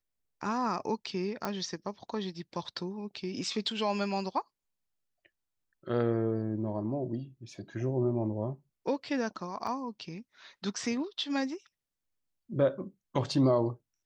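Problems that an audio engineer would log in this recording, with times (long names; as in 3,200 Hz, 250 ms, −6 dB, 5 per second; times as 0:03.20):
0:01.45: click −18 dBFS
0:09.67: drop-out 2.4 ms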